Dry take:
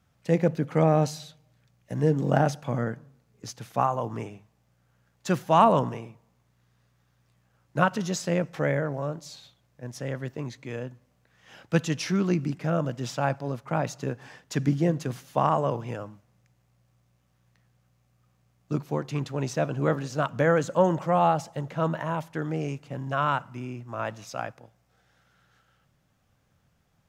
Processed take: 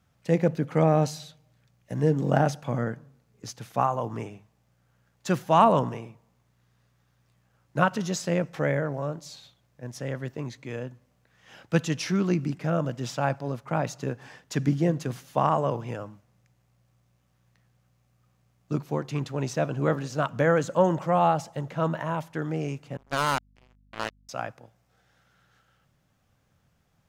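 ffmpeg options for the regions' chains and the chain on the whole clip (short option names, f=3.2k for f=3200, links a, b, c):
-filter_complex "[0:a]asettb=1/sr,asplit=3[a][b][c];[a]atrim=end=22.974[d];[b]atrim=start=22.97:end=24.29,asetpts=PTS-STARTPTS,afade=t=in:d=0.004:c=qsin,afade=t=out:st=1.316:d=0.004:c=qsin,acrusher=bits=3:mix=0:aa=0.5,aeval=exprs='val(0)+0.001*(sin(2*PI*50*n/s)+sin(2*PI*2*50*n/s)/2+sin(2*PI*3*50*n/s)/3+sin(2*PI*4*50*n/s)/4+sin(2*PI*5*50*n/s)/5)':c=same[e];[c]atrim=start=24.286[f];[d][e]acrossfade=d=0.004:c1=hsin:c2=qsin[g];[g][f]acrossfade=d=0.004:c1=qsin:c2=hsin"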